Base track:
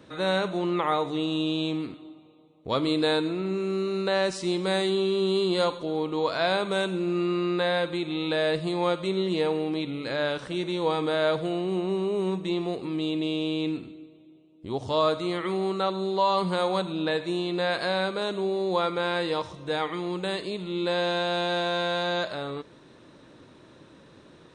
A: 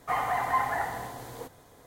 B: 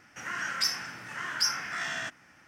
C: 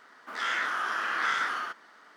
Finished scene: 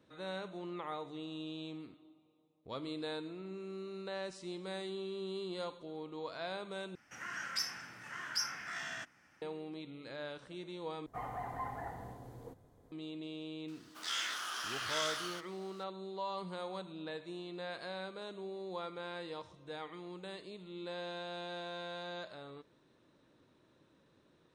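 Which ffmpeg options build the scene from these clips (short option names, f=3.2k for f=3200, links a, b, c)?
-filter_complex "[0:a]volume=-16.5dB[a];[1:a]tiltshelf=f=710:g=8.5[b];[3:a]aexciter=amount=4.2:drive=7.3:freq=2.7k[c];[a]asplit=3[d][e][f];[d]atrim=end=6.954[g];[2:a]atrim=end=2.47,asetpts=PTS-STARTPTS,volume=-8.5dB[h];[e]atrim=start=9.416:end=11.064[i];[b]atrim=end=1.86,asetpts=PTS-STARTPTS,volume=-12.5dB[j];[f]atrim=start=12.916[k];[c]atrim=end=2.16,asetpts=PTS-STARTPTS,volume=-12dB,afade=t=in:d=0.004:c=hsin,afade=t=out:st=2.156:d=0.004:c=hsin,adelay=13680[l];[g][h]acrossfade=d=0.004:c1=hsin:c2=hsin[m];[m][i]acrossfade=d=0.004:c1=hsin:c2=hsin[n];[n][j]acrossfade=d=0.004:c1=hsin:c2=hsin[o];[o][k]acrossfade=d=0.004:c1=hsin:c2=hsin[p];[p][l]amix=inputs=2:normalize=0"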